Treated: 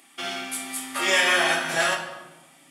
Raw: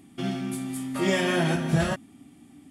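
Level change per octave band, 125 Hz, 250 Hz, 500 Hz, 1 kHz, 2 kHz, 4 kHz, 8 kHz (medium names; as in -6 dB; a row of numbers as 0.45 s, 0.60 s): -18.0 dB, -10.0 dB, 0.0 dB, +6.5 dB, +9.5 dB, +9.5 dB, +9.5 dB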